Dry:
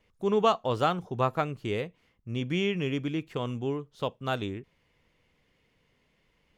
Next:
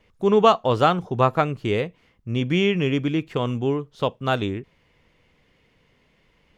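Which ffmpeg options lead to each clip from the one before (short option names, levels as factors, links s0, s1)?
-af "highshelf=f=7600:g=-7.5,volume=2.51"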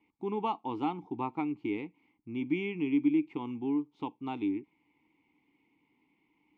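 -filter_complex "[0:a]asplit=2[s0][s1];[s1]acompressor=threshold=0.0447:ratio=6,volume=0.841[s2];[s0][s2]amix=inputs=2:normalize=0,asplit=3[s3][s4][s5];[s3]bandpass=f=300:t=q:w=8,volume=1[s6];[s4]bandpass=f=870:t=q:w=8,volume=0.501[s7];[s5]bandpass=f=2240:t=q:w=8,volume=0.355[s8];[s6][s7][s8]amix=inputs=3:normalize=0,volume=0.794"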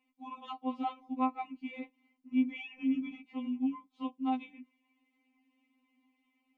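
-af "afftfilt=real='re*3.46*eq(mod(b,12),0)':imag='im*3.46*eq(mod(b,12),0)':win_size=2048:overlap=0.75"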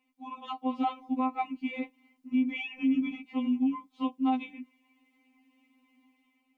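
-af "alimiter=level_in=1.41:limit=0.0631:level=0:latency=1:release=87,volume=0.708,dynaudnorm=f=160:g=7:m=1.78,volume=1.33"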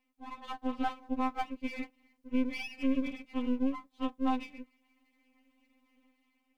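-af "aeval=exprs='if(lt(val(0),0),0.251*val(0),val(0))':c=same"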